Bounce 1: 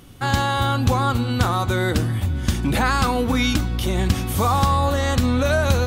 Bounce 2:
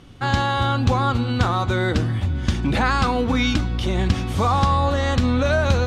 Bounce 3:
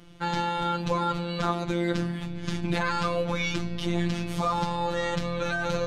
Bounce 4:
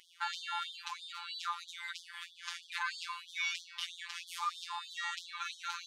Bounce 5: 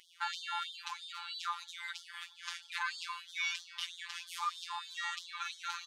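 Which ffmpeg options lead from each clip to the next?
ffmpeg -i in.wav -af "lowpass=5300" out.wav
ffmpeg -i in.wav -af "alimiter=limit=-12.5dB:level=0:latency=1:release=11,afftfilt=real='hypot(re,im)*cos(PI*b)':imag='0':win_size=1024:overlap=0.75,volume=-1dB" out.wav
ffmpeg -i in.wav -af "bandreject=frequency=850:width=27,acompressor=threshold=-29dB:ratio=2.5,afftfilt=real='re*gte(b*sr/1024,750*pow(3200/750,0.5+0.5*sin(2*PI*3.1*pts/sr)))':imag='im*gte(b*sr/1024,750*pow(3200/750,0.5+0.5*sin(2*PI*3.1*pts/sr)))':win_size=1024:overlap=0.75" out.wav
ffmpeg -i in.wav -af "aecho=1:1:696|1392|2088:0.0668|0.0281|0.0118" out.wav

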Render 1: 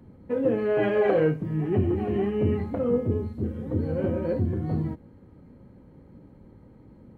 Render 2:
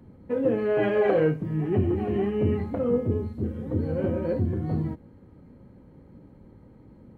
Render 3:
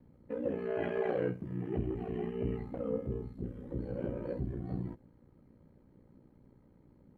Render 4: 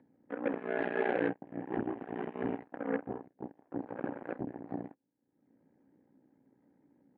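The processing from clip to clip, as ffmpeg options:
ffmpeg -i in.wav -af anull out.wav
ffmpeg -i in.wav -af "aeval=exprs='val(0)*sin(2*PI*30*n/s)':channel_layout=same,volume=-8dB" out.wav
ffmpeg -i in.wav -af "aeval=exprs='0.0891*(cos(1*acos(clip(val(0)/0.0891,-1,1)))-cos(1*PI/2))+0.000708*(cos(5*acos(clip(val(0)/0.0891,-1,1)))-cos(5*PI/2))+0.00178*(cos(6*acos(clip(val(0)/0.0891,-1,1)))-cos(6*PI/2))+0.0141*(cos(7*acos(clip(val(0)/0.0891,-1,1)))-cos(7*PI/2))':channel_layout=same,acompressor=mode=upward:threshold=-51dB:ratio=2.5,highpass=200,equalizer=frequency=280:width_type=q:width=4:gain=8,equalizer=frequency=790:width_type=q:width=4:gain=6,equalizer=frequency=1200:width_type=q:width=4:gain=-6,equalizer=frequency=1700:width_type=q:width=4:gain=8,lowpass=frequency=2900:width=0.5412,lowpass=frequency=2900:width=1.3066" out.wav

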